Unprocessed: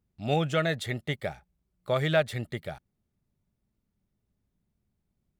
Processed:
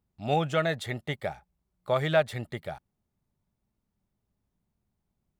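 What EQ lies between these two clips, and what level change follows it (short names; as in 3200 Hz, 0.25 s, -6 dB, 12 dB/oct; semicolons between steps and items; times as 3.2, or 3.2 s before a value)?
bell 890 Hz +6.5 dB 1 oct; -2.0 dB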